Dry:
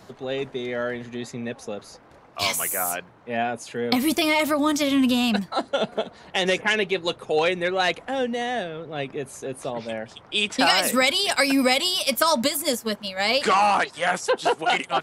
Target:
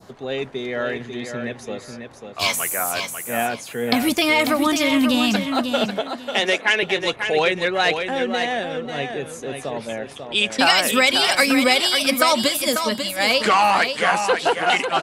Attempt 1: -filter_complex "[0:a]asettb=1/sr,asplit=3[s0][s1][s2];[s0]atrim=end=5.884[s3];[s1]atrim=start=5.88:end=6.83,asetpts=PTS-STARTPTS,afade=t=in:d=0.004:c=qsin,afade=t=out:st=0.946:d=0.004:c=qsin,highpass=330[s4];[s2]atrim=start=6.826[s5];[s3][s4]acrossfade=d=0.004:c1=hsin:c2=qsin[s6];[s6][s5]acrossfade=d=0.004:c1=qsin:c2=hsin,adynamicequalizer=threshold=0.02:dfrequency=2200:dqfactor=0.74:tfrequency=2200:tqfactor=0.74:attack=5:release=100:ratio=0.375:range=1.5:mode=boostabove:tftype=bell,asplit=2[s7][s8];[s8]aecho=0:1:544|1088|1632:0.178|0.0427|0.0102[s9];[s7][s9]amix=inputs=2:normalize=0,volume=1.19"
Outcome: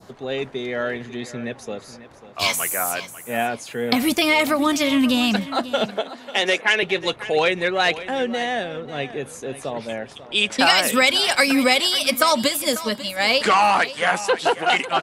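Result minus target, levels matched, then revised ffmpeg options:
echo-to-direct -8 dB
-filter_complex "[0:a]asettb=1/sr,asplit=3[s0][s1][s2];[s0]atrim=end=5.884[s3];[s1]atrim=start=5.88:end=6.83,asetpts=PTS-STARTPTS,afade=t=in:d=0.004:c=qsin,afade=t=out:st=0.946:d=0.004:c=qsin,highpass=330[s4];[s2]atrim=start=6.826[s5];[s3][s4]acrossfade=d=0.004:c1=hsin:c2=qsin[s6];[s6][s5]acrossfade=d=0.004:c1=qsin:c2=hsin,adynamicequalizer=threshold=0.02:dfrequency=2200:dqfactor=0.74:tfrequency=2200:tqfactor=0.74:attack=5:release=100:ratio=0.375:range=1.5:mode=boostabove:tftype=bell,asplit=2[s7][s8];[s8]aecho=0:1:544|1088|1632:0.447|0.107|0.0257[s9];[s7][s9]amix=inputs=2:normalize=0,volume=1.19"

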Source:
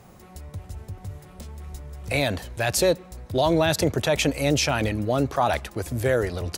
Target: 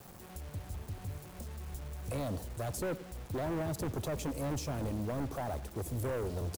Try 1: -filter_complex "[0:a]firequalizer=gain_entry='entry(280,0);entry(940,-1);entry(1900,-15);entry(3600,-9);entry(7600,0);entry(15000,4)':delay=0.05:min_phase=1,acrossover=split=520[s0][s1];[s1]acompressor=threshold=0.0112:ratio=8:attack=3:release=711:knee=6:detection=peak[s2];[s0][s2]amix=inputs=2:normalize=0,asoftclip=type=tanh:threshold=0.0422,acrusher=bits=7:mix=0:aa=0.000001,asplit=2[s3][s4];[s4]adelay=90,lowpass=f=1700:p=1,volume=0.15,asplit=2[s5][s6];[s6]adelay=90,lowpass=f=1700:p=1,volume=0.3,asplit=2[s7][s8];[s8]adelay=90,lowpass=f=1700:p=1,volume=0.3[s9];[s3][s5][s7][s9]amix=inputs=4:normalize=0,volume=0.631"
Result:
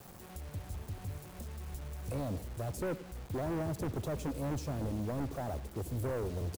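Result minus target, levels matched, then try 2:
compression: peak gain reduction +7 dB
-filter_complex "[0:a]firequalizer=gain_entry='entry(280,0);entry(940,-1);entry(1900,-15);entry(3600,-9);entry(7600,0);entry(15000,4)':delay=0.05:min_phase=1,acrossover=split=520[s0][s1];[s1]acompressor=threshold=0.0282:ratio=8:attack=3:release=711:knee=6:detection=peak[s2];[s0][s2]amix=inputs=2:normalize=0,asoftclip=type=tanh:threshold=0.0422,acrusher=bits=7:mix=0:aa=0.000001,asplit=2[s3][s4];[s4]adelay=90,lowpass=f=1700:p=1,volume=0.15,asplit=2[s5][s6];[s6]adelay=90,lowpass=f=1700:p=1,volume=0.3,asplit=2[s7][s8];[s8]adelay=90,lowpass=f=1700:p=1,volume=0.3[s9];[s3][s5][s7][s9]amix=inputs=4:normalize=0,volume=0.631"

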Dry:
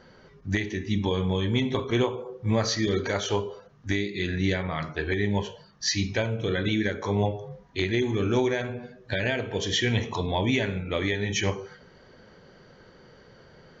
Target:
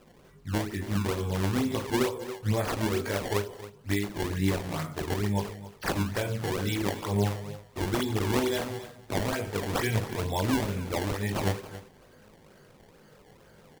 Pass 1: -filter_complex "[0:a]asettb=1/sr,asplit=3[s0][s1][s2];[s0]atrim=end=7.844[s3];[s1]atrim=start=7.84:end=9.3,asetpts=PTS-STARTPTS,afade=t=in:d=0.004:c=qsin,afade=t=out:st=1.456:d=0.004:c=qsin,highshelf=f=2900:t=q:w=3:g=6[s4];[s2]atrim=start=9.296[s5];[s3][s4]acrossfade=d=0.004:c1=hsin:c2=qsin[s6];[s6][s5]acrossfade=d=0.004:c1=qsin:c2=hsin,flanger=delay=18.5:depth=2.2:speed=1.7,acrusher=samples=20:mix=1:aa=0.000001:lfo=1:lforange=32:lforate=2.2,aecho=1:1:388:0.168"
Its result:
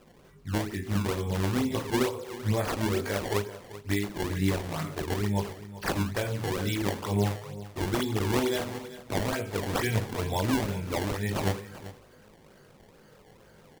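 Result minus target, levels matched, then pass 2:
echo 112 ms late
-filter_complex "[0:a]asettb=1/sr,asplit=3[s0][s1][s2];[s0]atrim=end=7.844[s3];[s1]atrim=start=7.84:end=9.3,asetpts=PTS-STARTPTS,afade=t=in:d=0.004:c=qsin,afade=t=out:st=1.456:d=0.004:c=qsin,highshelf=f=2900:t=q:w=3:g=6[s4];[s2]atrim=start=9.296[s5];[s3][s4]acrossfade=d=0.004:c1=hsin:c2=qsin[s6];[s6][s5]acrossfade=d=0.004:c1=qsin:c2=hsin,flanger=delay=18.5:depth=2.2:speed=1.7,acrusher=samples=20:mix=1:aa=0.000001:lfo=1:lforange=32:lforate=2.2,aecho=1:1:276:0.168"

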